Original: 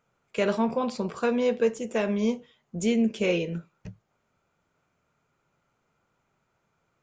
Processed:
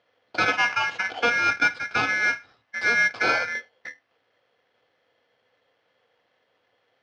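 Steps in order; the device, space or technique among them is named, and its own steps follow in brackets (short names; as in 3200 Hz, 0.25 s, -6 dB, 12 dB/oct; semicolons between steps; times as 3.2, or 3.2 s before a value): ring modulator pedal into a guitar cabinet (polarity switched at an audio rate 1900 Hz; speaker cabinet 87–4200 Hz, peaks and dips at 110 Hz +9 dB, 270 Hz +7 dB, 490 Hz +9 dB, 750 Hz +7 dB, 2400 Hz -5 dB); gain +4 dB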